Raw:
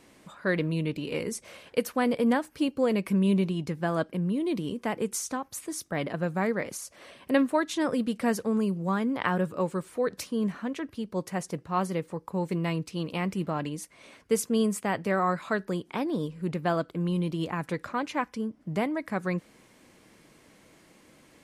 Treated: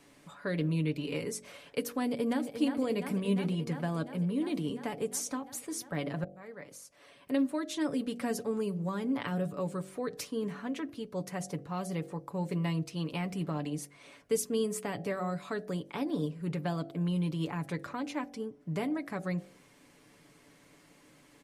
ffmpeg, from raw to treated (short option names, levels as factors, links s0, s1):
-filter_complex "[0:a]asplit=2[s0][s1];[s1]afade=t=in:st=2.04:d=0.01,afade=t=out:st=2.48:d=0.01,aecho=0:1:350|700|1050|1400|1750|2100|2450|2800|3150|3500|3850|4200:0.334965|0.267972|0.214378|0.171502|0.137202|0.109761|0.0878092|0.0702473|0.0561979|0.0449583|0.0359666|0.0287733[s2];[s0][s2]amix=inputs=2:normalize=0,asplit=2[s3][s4];[s3]atrim=end=6.24,asetpts=PTS-STARTPTS,afade=t=out:st=6.236:d=0.004:c=hsin[s5];[s4]atrim=start=6.24,asetpts=PTS-STARTPTS,afade=t=in:d=2.34:c=qsin[s6];[s5][s6]concat=n=2:v=0:a=1,aecho=1:1:7:0.52,bandreject=f=47.65:t=h:w=4,bandreject=f=95.3:t=h:w=4,bandreject=f=142.95:t=h:w=4,bandreject=f=190.6:t=h:w=4,bandreject=f=238.25:t=h:w=4,bandreject=f=285.9:t=h:w=4,bandreject=f=333.55:t=h:w=4,bandreject=f=381.2:t=h:w=4,bandreject=f=428.85:t=h:w=4,bandreject=f=476.5:t=h:w=4,bandreject=f=524.15:t=h:w=4,bandreject=f=571.8:t=h:w=4,bandreject=f=619.45:t=h:w=4,bandreject=f=667.1:t=h:w=4,bandreject=f=714.75:t=h:w=4,bandreject=f=762.4:t=h:w=4,bandreject=f=810.05:t=h:w=4,acrossover=split=480|3000[s7][s8][s9];[s8]acompressor=threshold=0.0178:ratio=6[s10];[s7][s10][s9]amix=inputs=3:normalize=0,volume=0.668"